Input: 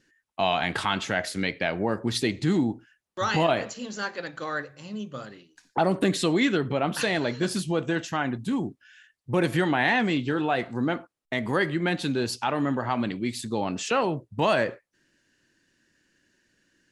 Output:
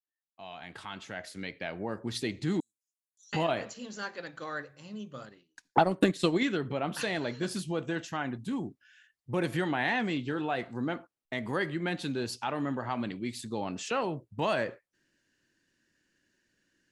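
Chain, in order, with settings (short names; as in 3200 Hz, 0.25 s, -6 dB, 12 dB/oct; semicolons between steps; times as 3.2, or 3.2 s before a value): opening faded in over 2.54 s; 2.6–3.33 inverse Chebyshev high-pass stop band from 2200 Hz, stop band 60 dB; 5.22–6.43 transient shaper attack +10 dB, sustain -9 dB; gain -6.5 dB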